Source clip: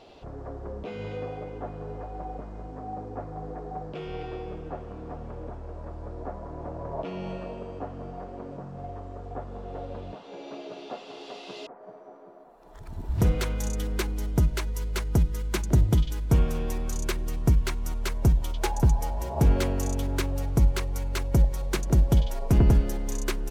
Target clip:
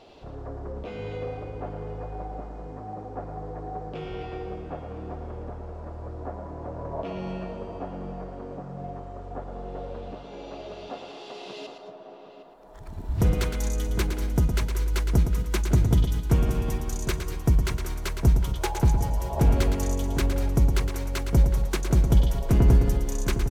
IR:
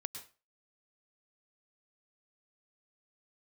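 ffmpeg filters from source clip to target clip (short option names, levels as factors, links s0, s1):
-filter_complex "[0:a]asplit=2[s0][s1];[s1]adelay=758,volume=0.316,highshelf=f=4000:g=-17.1[s2];[s0][s2]amix=inputs=2:normalize=0,asplit=2[s3][s4];[1:a]atrim=start_sample=2205,adelay=113[s5];[s4][s5]afir=irnorm=-1:irlink=0,volume=0.531[s6];[s3][s6]amix=inputs=2:normalize=0"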